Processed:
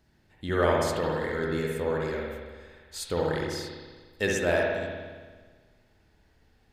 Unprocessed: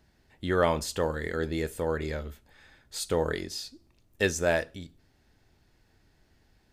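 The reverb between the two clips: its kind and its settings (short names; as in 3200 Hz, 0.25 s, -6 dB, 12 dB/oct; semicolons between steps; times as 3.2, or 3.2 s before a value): spring tank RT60 1.5 s, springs 57 ms, chirp 30 ms, DRR -2 dB; gain -2.5 dB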